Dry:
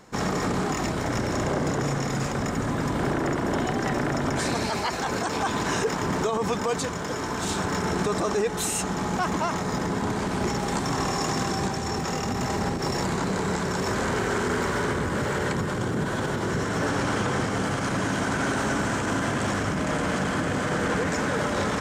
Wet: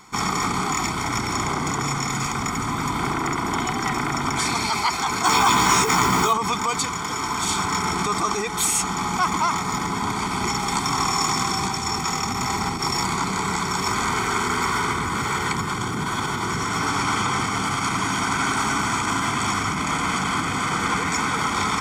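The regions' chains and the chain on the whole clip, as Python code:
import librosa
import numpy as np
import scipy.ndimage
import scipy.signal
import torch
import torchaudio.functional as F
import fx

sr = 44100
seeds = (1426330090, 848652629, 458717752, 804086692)

y = fx.chain(x, sr, fx.mod_noise(seeds[0], snr_db=25),
    fx.doubler(ms=16.0, db=-4),
    fx.env_flatten(amount_pct=70), at=(5.24, 6.33))
y = fx.low_shelf(y, sr, hz=480.0, db=-11.5)
y = y + 0.87 * np.pad(y, (int(0.9 * sr / 1000.0), 0))[:len(y)]
y = F.gain(torch.from_numpy(y), 5.0).numpy()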